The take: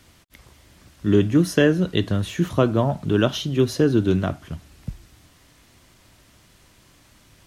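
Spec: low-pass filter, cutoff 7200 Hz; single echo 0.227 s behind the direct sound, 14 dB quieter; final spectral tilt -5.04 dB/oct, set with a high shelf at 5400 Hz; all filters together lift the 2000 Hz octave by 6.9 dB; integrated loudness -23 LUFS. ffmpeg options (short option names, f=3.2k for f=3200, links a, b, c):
-af "lowpass=7.2k,equalizer=f=2k:t=o:g=8.5,highshelf=f=5.4k:g=6,aecho=1:1:227:0.2,volume=-3dB"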